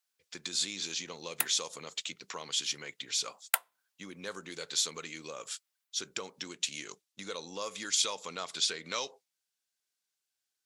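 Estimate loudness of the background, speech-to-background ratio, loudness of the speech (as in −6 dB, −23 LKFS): −33.5 LKFS, −1.0 dB, −34.5 LKFS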